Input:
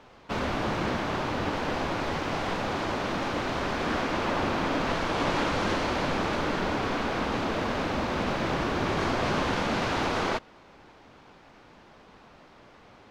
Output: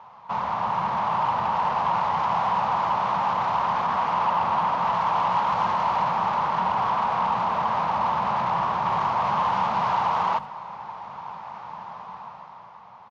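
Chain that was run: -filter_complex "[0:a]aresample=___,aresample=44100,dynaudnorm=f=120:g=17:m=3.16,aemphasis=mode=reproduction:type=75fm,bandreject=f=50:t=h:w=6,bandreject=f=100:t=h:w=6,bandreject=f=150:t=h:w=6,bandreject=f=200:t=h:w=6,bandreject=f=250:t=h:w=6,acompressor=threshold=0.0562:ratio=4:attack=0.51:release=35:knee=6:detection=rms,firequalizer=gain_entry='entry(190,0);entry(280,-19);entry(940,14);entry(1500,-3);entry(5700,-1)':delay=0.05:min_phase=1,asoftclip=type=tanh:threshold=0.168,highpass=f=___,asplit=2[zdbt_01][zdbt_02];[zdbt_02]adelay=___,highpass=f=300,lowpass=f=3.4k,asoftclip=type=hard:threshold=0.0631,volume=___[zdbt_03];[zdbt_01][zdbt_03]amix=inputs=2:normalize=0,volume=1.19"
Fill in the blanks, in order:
16000, 140, 80, 0.0794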